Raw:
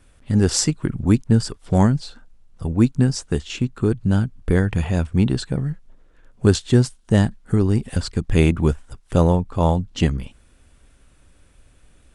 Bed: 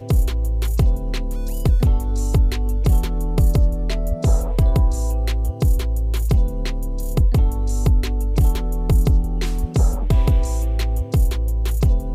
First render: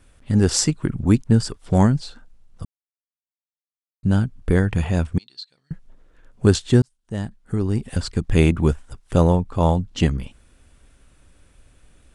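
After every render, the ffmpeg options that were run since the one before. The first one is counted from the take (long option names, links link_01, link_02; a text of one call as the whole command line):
ffmpeg -i in.wav -filter_complex "[0:a]asettb=1/sr,asplit=3[link_01][link_02][link_03];[link_01]atrim=end=5.184[link_04];[link_02]atrim=start=5.18:end=5.71,asetpts=PTS-STARTPTS,afade=type=in:duration=0.004:curve=qsin,afade=type=out:start_time=0.526:duration=0.004:curve=qsin,bandpass=frequency=4300:width_type=q:width=8.1[link_05];[link_03]atrim=start=5.706[link_06];[link_04][link_05]acrossfade=duration=0.004:curve1=hsin:curve2=qsin[link_07];[link_07][link_06]acrossfade=duration=0.004:curve1=qsin:curve2=hsin,asplit=4[link_08][link_09][link_10][link_11];[link_08]atrim=end=2.65,asetpts=PTS-STARTPTS,afade=type=out:start_time=2.646:duration=0.004:curve=hsin[link_12];[link_09]atrim=start=2.65:end=4.03,asetpts=PTS-STARTPTS,volume=0[link_13];[link_10]atrim=start=4.03:end=6.82,asetpts=PTS-STARTPTS,afade=type=in:duration=0.004:curve=hsin,afade=type=out:start_time=2.786:duration=0.004:curve=hsin[link_14];[link_11]atrim=start=6.82,asetpts=PTS-STARTPTS,afade=type=in:duration=1.33[link_15];[link_12][link_13][link_14][link_15]concat=n=4:v=0:a=1" out.wav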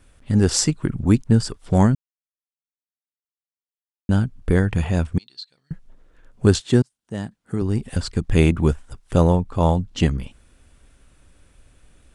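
ffmpeg -i in.wav -filter_complex "[0:a]asettb=1/sr,asplit=3[link_01][link_02][link_03];[link_01]atrim=end=6.604[link_04];[link_02]atrim=start=6.6:end=7.62,asetpts=PTS-STARTPTS,afade=type=in:duration=0.004:curve=qsin,afade=type=out:start_time=1.016:duration=0.004:curve=qsin,highpass=120[link_05];[link_03]atrim=start=7.616[link_06];[link_04][link_05]acrossfade=duration=0.004:curve1=hsin:curve2=qsin[link_07];[link_07][link_06]acrossfade=duration=0.004:curve1=qsin:curve2=hsin,asplit=3[link_08][link_09][link_10];[link_08]atrim=end=1.95,asetpts=PTS-STARTPTS,afade=type=out:start_time=1.946:duration=0.004:curve=hsin[link_11];[link_09]atrim=start=1.95:end=4.09,asetpts=PTS-STARTPTS,volume=0[link_12];[link_10]atrim=start=4.09,asetpts=PTS-STARTPTS,afade=type=in:duration=0.004:curve=hsin[link_13];[link_11][link_12][link_13]concat=n=3:v=0:a=1" out.wav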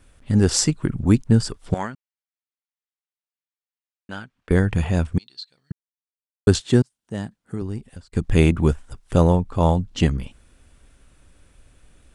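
ffmpeg -i in.wav -filter_complex "[0:a]asettb=1/sr,asplit=3[link_01][link_02][link_03];[link_01]atrim=end=1.744[link_04];[link_02]atrim=start=1.74:end=4.51,asetpts=PTS-STARTPTS,afade=type=in:duration=0.004:curve=qsin,afade=type=out:start_time=2.766:duration=0.004:curve=qsin,bandpass=frequency=2000:width_type=q:width=0.78[link_05];[link_03]atrim=start=4.506[link_06];[link_04][link_05]acrossfade=duration=0.004:curve1=hsin:curve2=qsin[link_07];[link_07][link_06]acrossfade=duration=0.004:curve1=qsin:curve2=hsin,asplit=4[link_08][link_09][link_10][link_11];[link_08]atrim=end=5.72,asetpts=PTS-STARTPTS,afade=type=out:start_time=5.716:duration=0.004:curve=hsin[link_12];[link_09]atrim=start=5.72:end=6.47,asetpts=PTS-STARTPTS,volume=0[link_13];[link_10]atrim=start=6.47:end=8.12,asetpts=PTS-STARTPTS,afade=type=in:duration=0.004:curve=hsin,afade=type=out:start_time=0.7:duration=0.95[link_14];[link_11]atrim=start=8.12,asetpts=PTS-STARTPTS,afade=type=in:duration=0.004:curve=hsin[link_15];[link_12][link_13][link_14][link_15]concat=n=4:v=0:a=1" out.wav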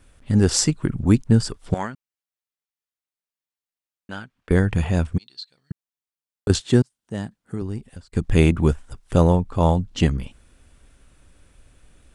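ffmpeg -i in.wav -filter_complex "[0:a]asettb=1/sr,asplit=3[link_01][link_02][link_03];[link_01]atrim=end=5.174[link_04];[link_02]atrim=start=5.17:end=6.5,asetpts=PTS-STARTPTS,afade=type=in:duration=0.004:curve=qsin,afade=type=out:start_time=1.326:duration=0.004:curve=qsin,acompressor=threshold=-21dB:ratio=6:attack=3.2:release=140:knee=1:detection=peak[link_05];[link_03]atrim=start=6.496[link_06];[link_04][link_05]acrossfade=duration=0.004:curve1=hsin:curve2=qsin[link_07];[link_07][link_06]acrossfade=duration=0.004:curve1=qsin:curve2=hsin" out.wav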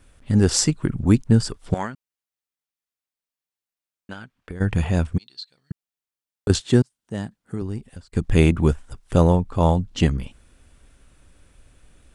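ffmpeg -i in.wav -filter_complex "[0:a]asplit=3[link_01][link_02][link_03];[link_01]afade=type=out:start_time=4.12:duration=0.02[link_04];[link_02]acompressor=threshold=-31dB:ratio=6:attack=3.2:release=140:knee=1:detection=peak,afade=type=in:start_time=4.12:duration=0.02,afade=type=out:start_time=4.6:duration=0.02[link_05];[link_03]afade=type=in:start_time=4.6:duration=0.02[link_06];[link_04][link_05][link_06]amix=inputs=3:normalize=0" out.wav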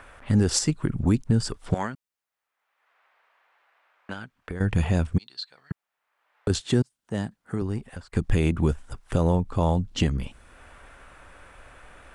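ffmpeg -i in.wav -filter_complex "[0:a]acrossover=split=600|2100[link_01][link_02][link_03];[link_02]acompressor=mode=upward:threshold=-36dB:ratio=2.5[link_04];[link_01][link_04][link_03]amix=inputs=3:normalize=0,alimiter=limit=-11dB:level=0:latency=1:release=188" out.wav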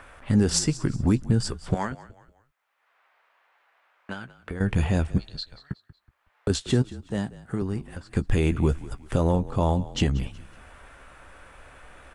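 ffmpeg -i in.wav -filter_complex "[0:a]asplit=2[link_01][link_02];[link_02]adelay=15,volume=-12dB[link_03];[link_01][link_03]amix=inputs=2:normalize=0,asplit=4[link_04][link_05][link_06][link_07];[link_05]adelay=185,afreqshift=-39,volume=-17.5dB[link_08];[link_06]adelay=370,afreqshift=-78,volume=-25.9dB[link_09];[link_07]adelay=555,afreqshift=-117,volume=-34.3dB[link_10];[link_04][link_08][link_09][link_10]amix=inputs=4:normalize=0" out.wav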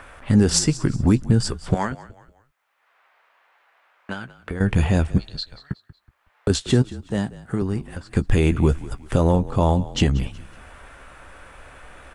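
ffmpeg -i in.wav -af "volume=4.5dB" out.wav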